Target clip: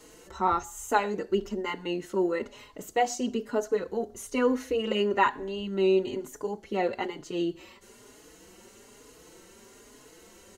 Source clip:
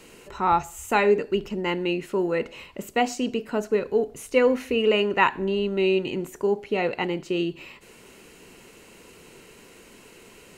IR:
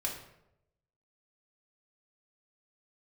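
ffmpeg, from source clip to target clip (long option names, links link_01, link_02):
-filter_complex "[0:a]equalizer=frequency=160:width_type=o:width=0.33:gain=-8,equalizer=frequency=2500:width_type=o:width=0.33:gain=-11,equalizer=frequency=6300:width_type=o:width=0.33:gain=6,asplit=2[link_01][link_02];[link_02]adelay=4.3,afreqshift=1.1[link_03];[link_01][link_03]amix=inputs=2:normalize=1"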